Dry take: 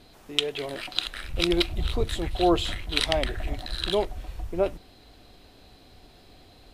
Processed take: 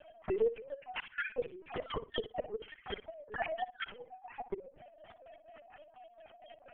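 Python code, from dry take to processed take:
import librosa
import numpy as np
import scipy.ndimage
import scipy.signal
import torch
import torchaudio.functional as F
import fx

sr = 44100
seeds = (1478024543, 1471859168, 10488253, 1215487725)

y = fx.sine_speech(x, sr)
y = fx.highpass(y, sr, hz=420.0, slope=6)
y = fx.over_compress(y, sr, threshold_db=-29.0, ratio=-1.0)
y = np.clip(y, -10.0 ** (-21.5 / 20.0), 10.0 ** (-21.5 / 20.0))
y = fx.filter_lfo_lowpass(y, sr, shape='square', hz=4.2, low_hz=550.0, high_hz=2700.0, q=0.73)
y = fx.gate_flip(y, sr, shuts_db=-27.0, range_db=-24)
y = fx.air_absorb(y, sr, metres=62.0)
y = fx.room_flutter(y, sr, wall_m=10.3, rt60_s=0.26)
y = fx.lpc_vocoder(y, sr, seeds[0], excitation='pitch_kept', order=10)
y = y * librosa.db_to_amplitude(5.0)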